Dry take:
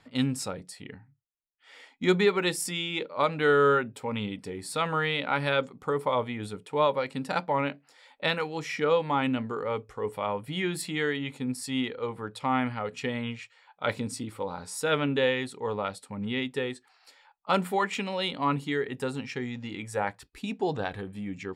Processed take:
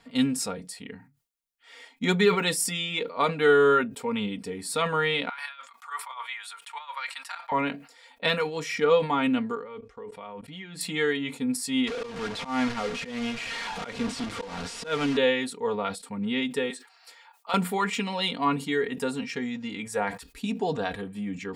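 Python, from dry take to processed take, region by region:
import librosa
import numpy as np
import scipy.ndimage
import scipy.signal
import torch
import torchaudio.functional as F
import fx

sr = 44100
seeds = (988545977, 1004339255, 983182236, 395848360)

y = fx.chain(x, sr, fx.cheby2_highpass(hz=400.0, order=4, stop_db=50),
    fx.over_compress(threshold_db=-37.0, ratio=-0.5),
    fx.high_shelf(hz=3500.0, db=-6.0), at=(5.29, 7.52))
y = fx.chain(y, sr, fx.lowpass(hz=5500.0, slope=12),
    fx.level_steps(step_db=21), at=(9.55, 10.81))
y = fx.chain(y, sr, fx.delta_mod(bps=64000, step_db=-29.0),
    fx.auto_swell(attack_ms=178.0),
    fx.lowpass(hz=4400.0, slope=12), at=(11.87, 15.17))
y = fx.chain(y, sr, fx.highpass(hz=480.0, slope=12),
    fx.band_squash(depth_pct=40), at=(16.7, 17.54))
y = fx.high_shelf(y, sr, hz=5200.0, db=4.5)
y = y + 0.67 * np.pad(y, (int(4.3 * sr / 1000.0), 0))[:len(y)]
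y = fx.sustainer(y, sr, db_per_s=140.0)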